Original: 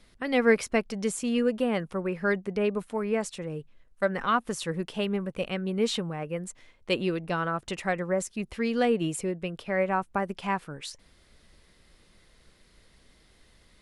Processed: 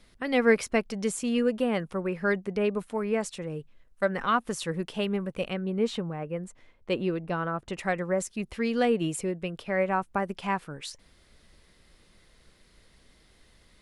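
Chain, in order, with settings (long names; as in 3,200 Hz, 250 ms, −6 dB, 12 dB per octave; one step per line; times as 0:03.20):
0:05.53–0:07.79: high-shelf EQ 2,400 Hz −10 dB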